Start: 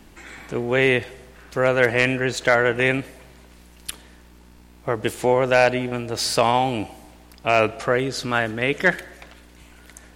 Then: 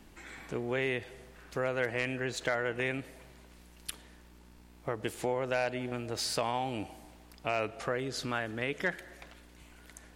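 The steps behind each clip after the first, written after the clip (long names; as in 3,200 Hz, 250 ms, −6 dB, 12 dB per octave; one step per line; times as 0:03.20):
downward compressor 2 to 1, threshold −25 dBFS, peak gain reduction 8 dB
level −7.5 dB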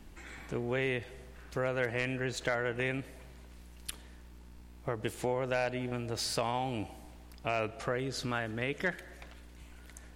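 low-shelf EQ 110 Hz +8.5 dB
level −1 dB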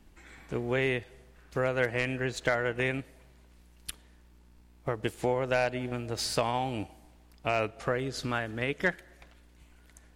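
expander for the loud parts 1.5 to 1, over −51 dBFS
level +5.5 dB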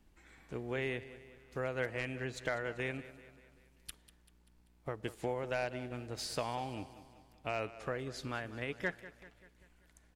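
repeating echo 194 ms, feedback 53%, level −16 dB
level −8.5 dB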